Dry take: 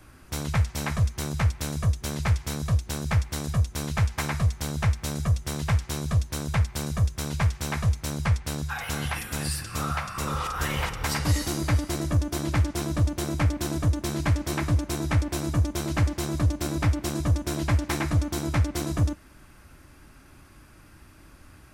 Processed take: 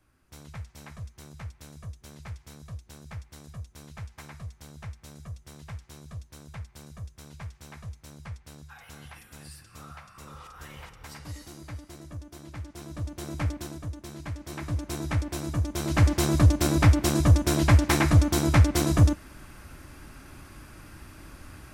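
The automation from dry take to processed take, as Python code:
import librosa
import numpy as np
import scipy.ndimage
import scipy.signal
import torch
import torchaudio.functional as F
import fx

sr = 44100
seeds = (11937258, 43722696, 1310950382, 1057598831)

y = fx.gain(x, sr, db=fx.line((12.54, -16.5), (13.49, -5.0), (13.81, -12.5), (14.34, -12.5), (14.93, -4.0), (15.64, -4.0), (16.13, 5.0)))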